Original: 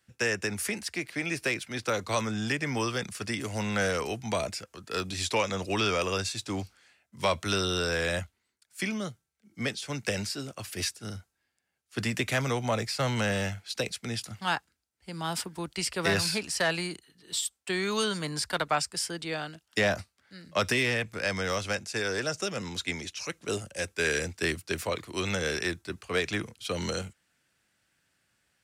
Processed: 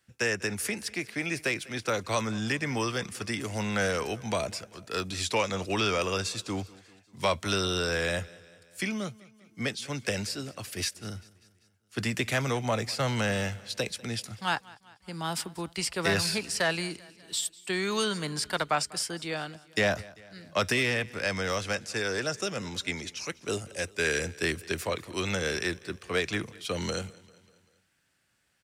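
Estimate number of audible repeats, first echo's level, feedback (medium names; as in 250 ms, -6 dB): 3, -22.0 dB, 56%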